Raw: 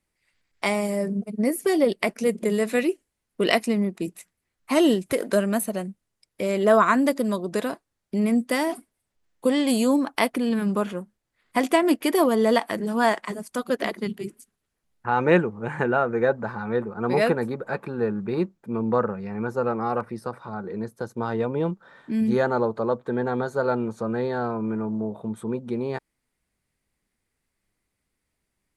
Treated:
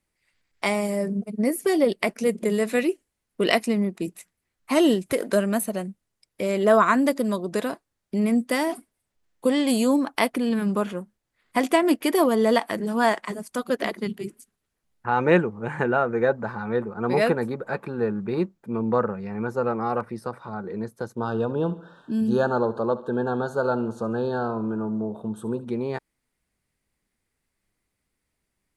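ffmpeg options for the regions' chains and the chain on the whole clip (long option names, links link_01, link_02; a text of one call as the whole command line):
ffmpeg -i in.wav -filter_complex "[0:a]asettb=1/sr,asplit=3[link_01][link_02][link_03];[link_01]atrim=end=21.164[link_04];[link_02]atrim=start=21.16:end=25.65,asetpts=PTS-STARTPTS,afade=type=in:duration=0.004:curve=qsin,afade=type=out:start_time=4.486:duration=0.004:curve=qsin,asuperstop=centerf=2100:order=12:qfactor=2.5,aecho=1:1:70|140|210|280:0.158|0.0777|0.0381|0.0186,atrim=end_sample=198009[link_05];[link_03]atrim=start=25.646[link_06];[link_04][link_05]acrossfade=duration=0.004:curve1=hsin:curve2=qsin[link_07];[link_07][link_06]acrossfade=duration=0.004:curve1=qsin:curve2=hsin" out.wav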